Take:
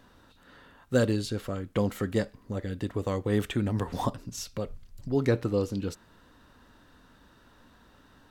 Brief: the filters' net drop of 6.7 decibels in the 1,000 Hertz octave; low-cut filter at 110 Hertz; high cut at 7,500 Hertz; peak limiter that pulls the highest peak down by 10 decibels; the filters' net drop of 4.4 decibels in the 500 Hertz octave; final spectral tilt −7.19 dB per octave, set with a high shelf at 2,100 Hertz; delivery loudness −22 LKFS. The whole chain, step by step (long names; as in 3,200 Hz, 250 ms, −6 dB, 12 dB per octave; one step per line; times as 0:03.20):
high-pass filter 110 Hz
low-pass filter 7,500 Hz
parametric band 500 Hz −3.5 dB
parametric band 1,000 Hz −6 dB
high-shelf EQ 2,100 Hz −6.5 dB
level +15 dB
brickwall limiter −9 dBFS